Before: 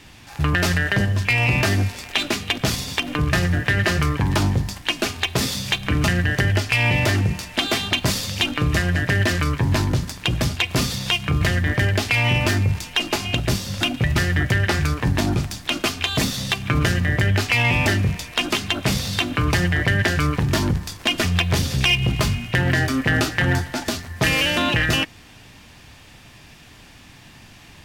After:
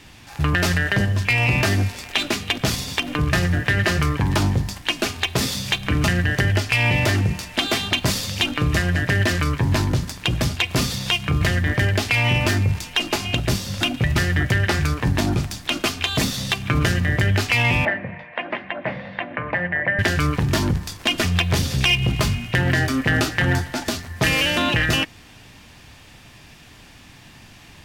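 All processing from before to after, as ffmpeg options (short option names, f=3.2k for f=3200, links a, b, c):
-filter_complex "[0:a]asettb=1/sr,asplit=3[a][b][c];[a]atrim=end=17.854[d];[b]atrim=start=17.85:end=19.99,asetpts=PTS-STARTPTS,afade=t=in:d=0.004:c=qsin,afade=t=out:st=2.136:d=0.004:c=qsin,highpass=230,equalizer=f=280:t=q:w=4:g=-6,equalizer=f=400:t=q:w=4:g=-10,equalizer=f=570:t=q:w=4:g=7,equalizer=f=1.3k:t=q:w=4:g=-8,equalizer=f=1.9k:t=q:w=4:g=6,lowpass=f=2k:w=0.5412,lowpass=f=2k:w=1.3066,bandreject=f=50:t=h:w=6,bandreject=f=100:t=h:w=6,bandreject=f=150:t=h:w=6,bandreject=f=200:t=h:w=6,bandreject=f=250:t=h:w=6,bandreject=f=300:t=h:w=6,bandreject=f=350:t=h:w=6,bandreject=f=400:t=h:w=6[e];[c]atrim=start=19.986[f];[d][e]acrossfade=d=0.004:c1=hsin:c2=qsin[g];[g][f]acrossfade=d=0.004:c1=qsin:c2=hsin"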